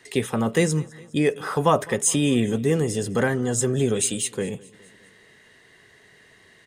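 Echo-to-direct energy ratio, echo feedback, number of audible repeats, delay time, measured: -21.0 dB, 59%, 3, 207 ms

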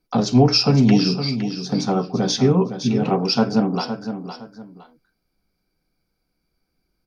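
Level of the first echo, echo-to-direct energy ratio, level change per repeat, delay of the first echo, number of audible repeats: -9.5 dB, -9.0 dB, -11.0 dB, 512 ms, 2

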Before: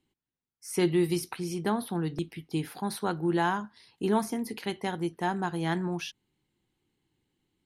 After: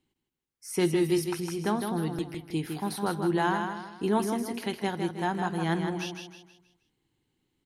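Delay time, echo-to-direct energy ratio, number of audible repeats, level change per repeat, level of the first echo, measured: 158 ms, -5.5 dB, 4, -8.0 dB, -6.0 dB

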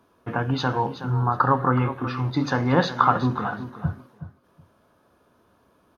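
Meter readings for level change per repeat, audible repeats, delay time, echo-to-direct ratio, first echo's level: -15.5 dB, 2, 371 ms, -12.0 dB, -12.0 dB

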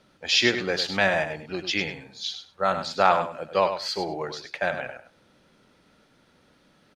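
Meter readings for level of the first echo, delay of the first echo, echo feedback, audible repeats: -9.0 dB, 100 ms, 16%, 2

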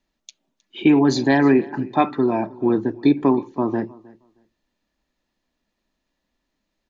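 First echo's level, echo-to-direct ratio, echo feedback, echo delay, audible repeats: -23.0 dB, -23.0 dB, no regular repeats, 313 ms, 1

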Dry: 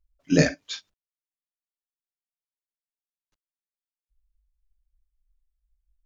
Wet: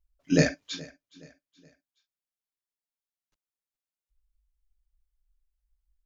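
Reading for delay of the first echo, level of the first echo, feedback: 421 ms, -22.0 dB, 41%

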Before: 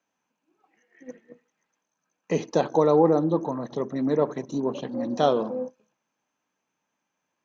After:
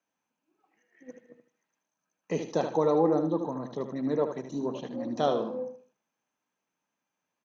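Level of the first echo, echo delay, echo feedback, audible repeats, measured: -8.0 dB, 77 ms, 26%, 3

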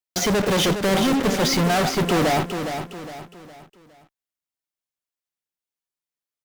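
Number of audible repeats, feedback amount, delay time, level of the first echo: 4, 39%, 411 ms, -8.0 dB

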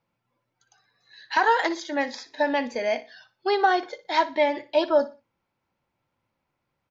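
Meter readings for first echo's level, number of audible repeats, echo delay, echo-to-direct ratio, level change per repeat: -16.0 dB, 2, 60 ms, -15.5 dB, -10.5 dB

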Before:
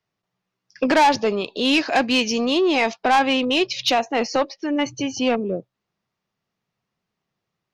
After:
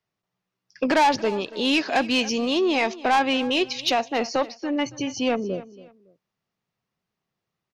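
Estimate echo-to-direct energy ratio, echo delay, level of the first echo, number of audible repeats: -17.5 dB, 280 ms, -18.0 dB, 2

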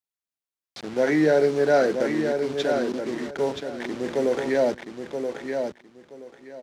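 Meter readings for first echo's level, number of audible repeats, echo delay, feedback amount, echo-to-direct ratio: -6.0 dB, 3, 976 ms, 21%, -6.0 dB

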